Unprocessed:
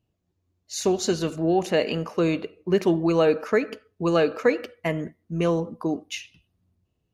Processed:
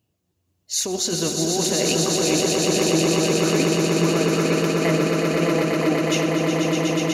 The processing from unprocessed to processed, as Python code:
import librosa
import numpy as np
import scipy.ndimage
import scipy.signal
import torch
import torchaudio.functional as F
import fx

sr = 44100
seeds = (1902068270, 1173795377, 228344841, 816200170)

y = scipy.signal.sosfilt(scipy.signal.butter(2, 69.0, 'highpass', fs=sr, output='sos'), x)
y = fx.high_shelf(y, sr, hz=4400.0, db=9.0)
y = fx.over_compress(y, sr, threshold_db=-24.0, ratio=-1.0)
y = fx.echo_swell(y, sr, ms=122, loudest=8, wet_db=-5.0)